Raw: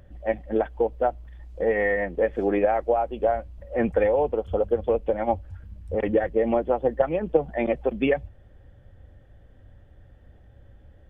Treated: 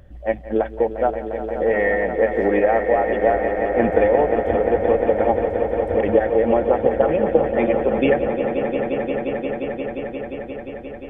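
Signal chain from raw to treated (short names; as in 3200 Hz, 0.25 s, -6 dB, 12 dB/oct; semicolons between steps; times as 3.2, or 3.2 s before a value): swelling echo 0.176 s, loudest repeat 5, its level -10.5 dB; gain +3.5 dB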